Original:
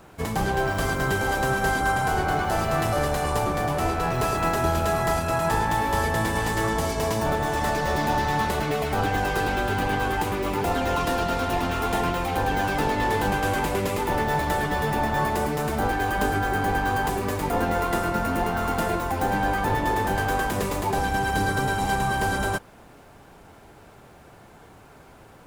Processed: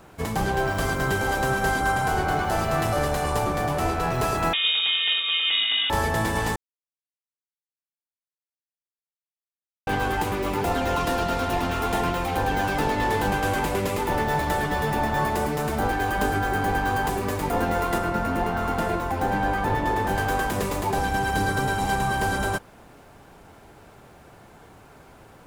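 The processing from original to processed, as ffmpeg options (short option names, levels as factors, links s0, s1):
-filter_complex "[0:a]asettb=1/sr,asplit=3[s0][s1][s2];[s0]atrim=end=4.534[s3];[s1]atrim=start=4.53:end=5.9,asetpts=PTS-STARTPTS,afade=t=in:d=0.004:c=qsin,afade=t=out:st=1.366:d=0.004:c=qsin,lowpass=f=3200:t=q:w=0.5098,lowpass=f=3200:t=q:w=0.6013,lowpass=f=3200:t=q:w=0.9,lowpass=f=3200:t=q:w=2.563,afreqshift=-3800[s4];[s2]atrim=start=5.896[s5];[s3][s4]acrossfade=d=0.004:c1=hsin:c2=qsin[s6];[s6][s5]acrossfade=d=0.004:c1=qsin:c2=hsin,asettb=1/sr,asplit=3[s7][s8][s9];[s7]atrim=end=17.984[s10];[s8]atrim=start=17.98:end=20.09,asetpts=PTS-STARTPTS,afade=t=in:d=0.004:c=qsin,afade=t=out:st=2.106:d=0.004:c=qsin,highshelf=f=4600:g=-6.5[s11];[s9]atrim=start=20.086[s12];[s10][s11]acrossfade=d=0.004:c1=hsin:c2=qsin[s13];[s13][s12]acrossfade=d=0.004:c1=qsin:c2=hsin,asplit=3[s14][s15][s16];[s14]atrim=end=6.56,asetpts=PTS-STARTPTS,afade=t=out:st=6.556:d=0.004:c=hsin[s17];[s15]atrim=start=6.56:end=9.87,asetpts=PTS-STARTPTS,volume=0[s18];[s16]atrim=start=9.87,asetpts=PTS-STARTPTS,afade=t=in:d=0.004:c=hsin[s19];[s17][s18][s19]concat=n=3:v=0:a=1"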